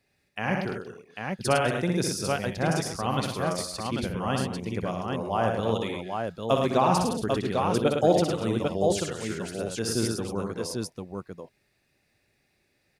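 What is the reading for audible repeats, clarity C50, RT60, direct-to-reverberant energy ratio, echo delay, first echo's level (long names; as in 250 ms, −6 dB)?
5, no reverb audible, no reverb audible, no reverb audible, 62 ms, −5.0 dB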